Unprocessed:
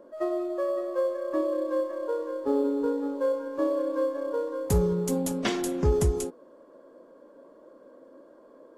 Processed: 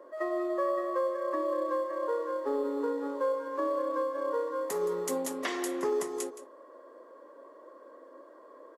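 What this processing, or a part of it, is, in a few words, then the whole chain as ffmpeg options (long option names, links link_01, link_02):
laptop speaker: -af "highpass=frequency=320:width=0.5412,highpass=frequency=320:width=1.3066,equalizer=frequency=1100:width_type=o:width=0.26:gain=9.5,equalizer=frequency=1900:width_type=o:width=0.21:gain=11.5,alimiter=limit=-21.5dB:level=0:latency=1:release=258,aecho=1:1:170:0.188"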